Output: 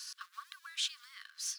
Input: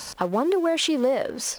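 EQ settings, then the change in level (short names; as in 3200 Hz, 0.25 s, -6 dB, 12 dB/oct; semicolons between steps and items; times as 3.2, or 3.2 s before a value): rippled Chebyshev high-pass 1100 Hz, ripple 6 dB; LPF 2100 Hz 6 dB/oct; differentiator; +4.5 dB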